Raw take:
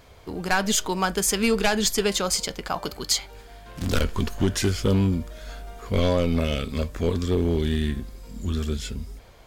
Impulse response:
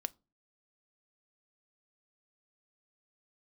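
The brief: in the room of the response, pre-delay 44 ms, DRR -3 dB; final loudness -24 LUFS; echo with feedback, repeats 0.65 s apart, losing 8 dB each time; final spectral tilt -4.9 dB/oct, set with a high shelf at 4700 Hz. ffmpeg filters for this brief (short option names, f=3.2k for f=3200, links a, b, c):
-filter_complex "[0:a]highshelf=f=4.7k:g=-7,aecho=1:1:650|1300|1950|2600|3250:0.398|0.159|0.0637|0.0255|0.0102,asplit=2[a][b];[1:a]atrim=start_sample=2205,adelay=44[c];[b][c]afir=irnorm=-1:irlink=0,volume=4dB[d];[a][d]amix=inputs=2:normalize=0,volume=-3.5dB"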